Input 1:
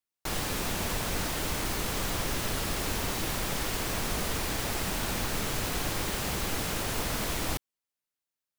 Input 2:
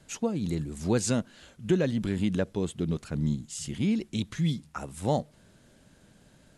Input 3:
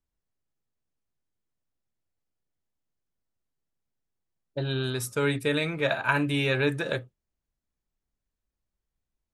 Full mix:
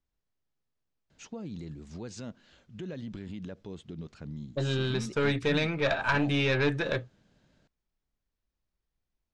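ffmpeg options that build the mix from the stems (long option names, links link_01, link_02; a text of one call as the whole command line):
ffmpeg -i stem1.wav -i stem2.wav -i stem3.wav -filter_complex "[1:a]alimiter=limit=-23.5dB:level=0:latency=1:release=62,adelay=1100,volume=-8dB[link_01];[2:a]aeval=exprs='(tanh(10*val(0)+0.35)-tanh(0.35))/10':channel_layout=same,volume=1.5dB[link_02];[link_01][link_02]amix=inputs=2:normalize=0,lowpass=frequency=6100:width=0.5412,lowpass=frequency=6100:width=1.3066" out.wav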